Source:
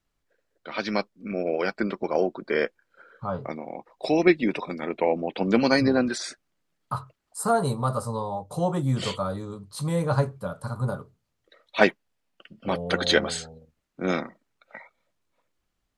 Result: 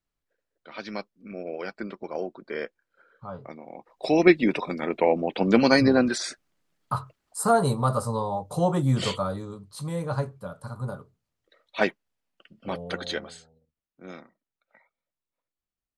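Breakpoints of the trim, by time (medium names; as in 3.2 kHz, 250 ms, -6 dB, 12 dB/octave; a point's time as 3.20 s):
3.57 s -8 dB
4.21 s +2 dB
9.04 s +2 dB
9.90 s -5 dB
12.83 s -5 dB
13.44 s -16.5 dB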